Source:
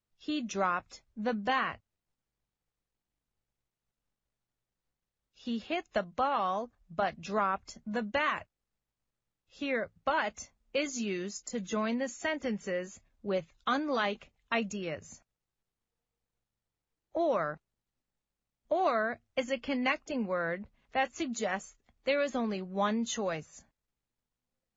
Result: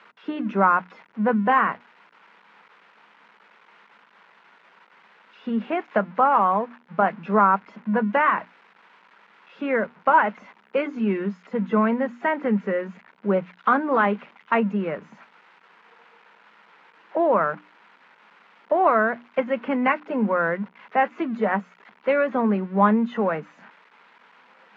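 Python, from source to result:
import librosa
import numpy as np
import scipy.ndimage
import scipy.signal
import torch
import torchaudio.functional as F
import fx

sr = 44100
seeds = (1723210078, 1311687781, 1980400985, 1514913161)

y = x + 0.5 * 10.0 ** (-32.5 / 20.0) * np.diff(np.sign(x), prepend=np.sign(x[:1]))
y = fx.cabinet(y, sr, low_hz=160.0, low_slope=24, high_hz=2200.0, hz=(200.0, 440.0, 950.0, 1400.0), db=(9, 5, 9, 5))
y = fx.hum_notches(y, sr, base_hz=60, count=5)
y = y * librosa.db_to_amplitude(7.0)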